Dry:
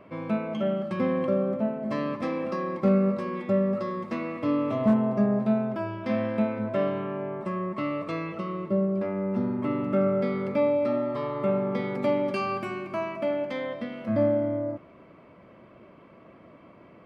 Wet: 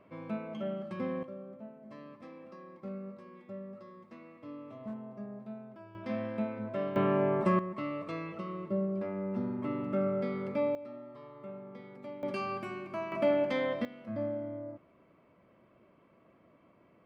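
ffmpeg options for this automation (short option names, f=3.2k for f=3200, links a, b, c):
-af "asetnsamples=n=441:p=0,asendcmd='1.23 volume volume -20dB;5.95 volume volume -8.5dB;6.96 volume volume 4.5dB;7.59 volume volume -7dB;10.75 volume volume -19.5dB;12.23 volume volume -7dB;13.12 volume volume 0.5dB;13.85 volume volume -12dB',volume=-9.5dB"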